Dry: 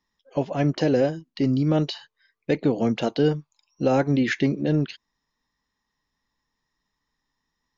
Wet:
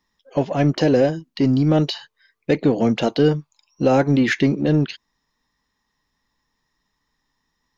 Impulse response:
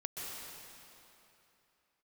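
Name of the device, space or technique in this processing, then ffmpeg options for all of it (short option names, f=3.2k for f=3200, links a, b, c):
parallel distortion: -filter_complex "[0:a]asplit=2[a][b];[b]asoftclip=type=hard:threshold=-25.5dB,volume=-11dB[c];[a][c]amix=inputs=2:normalize=0,volume=3.5dB"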